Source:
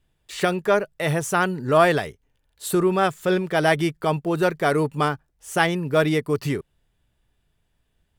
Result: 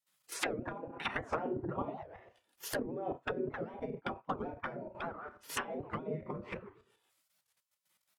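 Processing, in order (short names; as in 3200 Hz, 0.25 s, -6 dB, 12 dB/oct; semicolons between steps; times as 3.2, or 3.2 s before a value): envelope flanger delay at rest 2.5 ms, full sweep at -14.5 dBFS; steep high-pass 170 Hz 48 dB/oct; narrowing echo 68 ms, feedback 41%, band-pass 1100 Hz, level -17 dB; shoebox room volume 220 m³, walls furnished, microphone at 1.7 m; level quantiser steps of 13 dB; doubler 32 ms -11 dB; 2.74–4.95 gate -30 dBFS, range -28 dB; treble ducked by the level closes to 310 Hz, closed at -23 dBFS; high shelf 12000 Hz +10.5 dB; spectral gate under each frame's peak -15 dB weak; record warp 78 rpm, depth 250 cents; gain +7.5 dB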